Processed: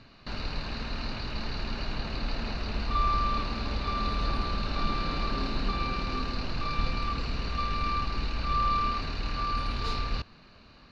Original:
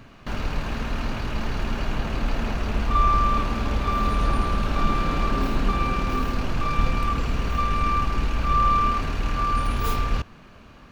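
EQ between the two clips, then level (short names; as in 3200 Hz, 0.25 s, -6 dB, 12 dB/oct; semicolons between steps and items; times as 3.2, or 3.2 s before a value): synth low-pass 4300 Hz, resonance Q 5; notch 3300 Hz, Q 8; -7.5 dB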